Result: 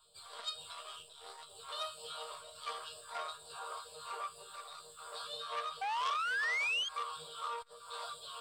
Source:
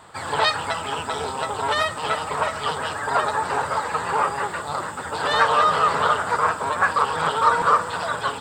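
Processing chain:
downward compressor, threshold −21 dBFS, peak gain reduction 9 dB
bass and treble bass +6 dB, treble +11 dB
phaser with its sweep stopped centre 1,300 Hz, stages 8
resonators tuned to a chord D#3 major, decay 0.43 s
all-pass phaser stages 2, 2.1 Hz, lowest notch 120–1,300 Hz
graphic EQ with 10 bands 125 Hz −10 dB, 250 Hz −12 dB, 500 Hz +4 dB, 1,000 Hz +9 dB, 2,000 Hz −9 dB, 4,000 Hz +7 dB, 8,000 Hz +3 dB
sound drawn into the spectrogram rise, 0:05.81–0:06.89, 760–3,300 Hz −33 dBFS
saturating transformer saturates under 2,700 Hz

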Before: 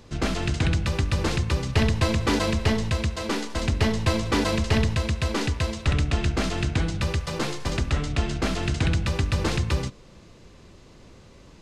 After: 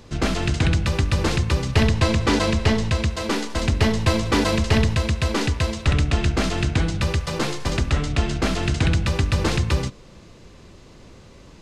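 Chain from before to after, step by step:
0:01.88–0:03.09: low-pass filter 9,800 Hz 12 dB per octave
level +3.5 dB

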